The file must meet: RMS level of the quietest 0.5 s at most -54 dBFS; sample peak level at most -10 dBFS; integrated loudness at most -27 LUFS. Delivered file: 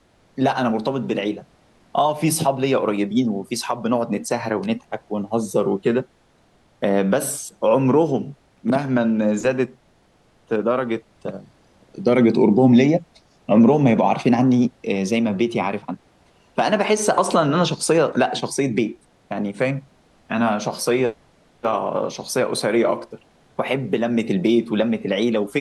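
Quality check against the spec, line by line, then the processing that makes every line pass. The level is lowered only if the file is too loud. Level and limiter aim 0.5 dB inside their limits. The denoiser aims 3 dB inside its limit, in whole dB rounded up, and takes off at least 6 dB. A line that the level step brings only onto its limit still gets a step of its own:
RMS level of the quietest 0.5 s -58 dBFS: pass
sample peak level -6.0 dBFS: fail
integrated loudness -20.5 LUFS: fail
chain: trim -7 dB

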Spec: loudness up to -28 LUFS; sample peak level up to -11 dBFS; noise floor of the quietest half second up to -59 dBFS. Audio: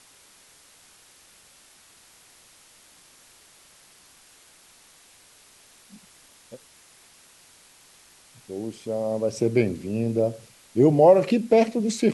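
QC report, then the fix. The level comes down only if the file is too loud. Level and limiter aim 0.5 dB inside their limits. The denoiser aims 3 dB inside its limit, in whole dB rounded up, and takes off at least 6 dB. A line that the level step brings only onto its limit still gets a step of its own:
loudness -22.0 LUFS: fail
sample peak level -5.5 dBFS: fail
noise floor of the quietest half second -54 dBFS: fail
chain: trim -6.5 dB

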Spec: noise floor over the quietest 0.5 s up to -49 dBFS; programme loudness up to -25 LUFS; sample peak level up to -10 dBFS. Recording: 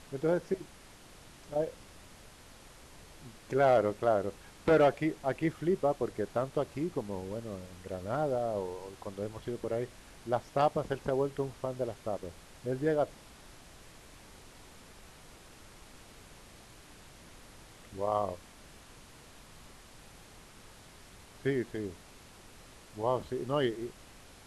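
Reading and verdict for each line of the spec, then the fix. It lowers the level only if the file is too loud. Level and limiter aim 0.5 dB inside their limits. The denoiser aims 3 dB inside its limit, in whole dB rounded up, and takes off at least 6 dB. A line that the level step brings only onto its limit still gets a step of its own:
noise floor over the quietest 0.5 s -54 dBFS: pass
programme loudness -33.0 LUFS: pass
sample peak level -15.5 dBFS: pass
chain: none needed

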